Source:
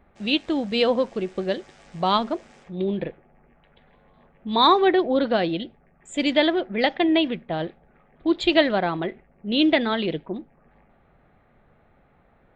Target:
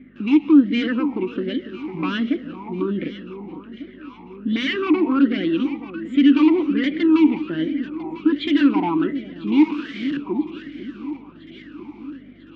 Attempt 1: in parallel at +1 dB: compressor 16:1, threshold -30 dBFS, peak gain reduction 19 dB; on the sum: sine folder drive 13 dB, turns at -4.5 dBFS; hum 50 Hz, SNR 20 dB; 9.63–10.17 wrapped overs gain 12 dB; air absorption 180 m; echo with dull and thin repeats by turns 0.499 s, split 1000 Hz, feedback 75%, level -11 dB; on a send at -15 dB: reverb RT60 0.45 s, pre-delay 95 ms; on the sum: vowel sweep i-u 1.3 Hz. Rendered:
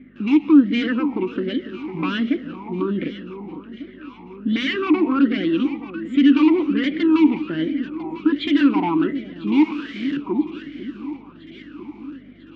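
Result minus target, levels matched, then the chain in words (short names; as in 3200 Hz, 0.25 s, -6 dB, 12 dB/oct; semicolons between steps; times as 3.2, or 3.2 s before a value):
compressor: peak gain reduction -7 dB
in parallel at +1 dB: compressor 16:1, threshold -37.5 dBFS, peak gain reduction 26 dB; on the sum: sine folder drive 13 dB, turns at -4.5 dBFS; hum 50 Hz, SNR 20 dB; 9.63–10.17 wrapped overs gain 12 dB; air absorption 180 m; echo with dull and thin repeats by turns 0.499 s, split 1000 Hz, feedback 75%, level -11 dB; on a send at -15 dB: reverb RT60 0.45 s, pre-delay 95 ms; on the sum: vowel sweep i-u 1.3 Hz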